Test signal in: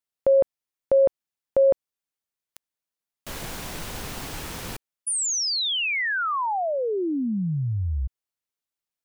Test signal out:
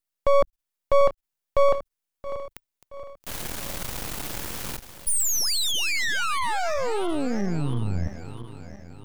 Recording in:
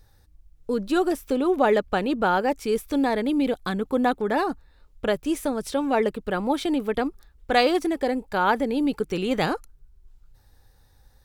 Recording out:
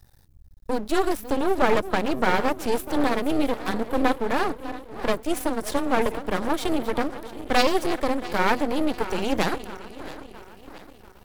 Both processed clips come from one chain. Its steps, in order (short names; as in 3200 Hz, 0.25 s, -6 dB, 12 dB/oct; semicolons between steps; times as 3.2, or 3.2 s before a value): regenerating reverse delay 0.337 s, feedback 67%, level -13.5 dB; high shelf 8700 Hz +6.5 dB; frequency shift +17 Hz; half-wave rectifier; gain +3.5 dB